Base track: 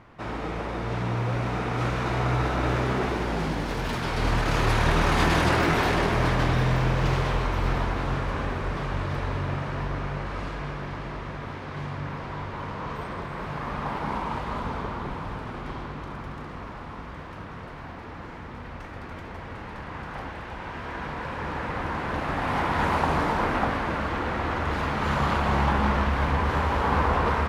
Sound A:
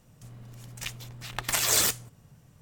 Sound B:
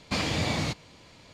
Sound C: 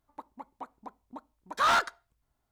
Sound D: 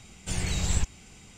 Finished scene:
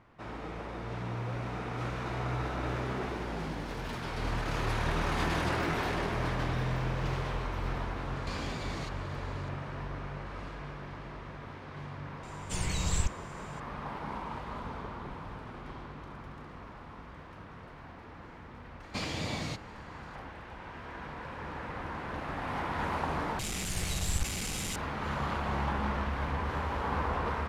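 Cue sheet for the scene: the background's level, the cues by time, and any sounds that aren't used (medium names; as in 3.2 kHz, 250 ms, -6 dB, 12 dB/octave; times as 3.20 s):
base track -9 dB
8.16 s: add B -2.5 dB + compression, threshold -35 dBFS
12.23 s: add D -3.5 dB
18.83 s: add B -7.5 dB
23.39 s: replace with D -5.5 dB + one-bit delta coder 64 kbps, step -23.5 dBFS
not used: A, C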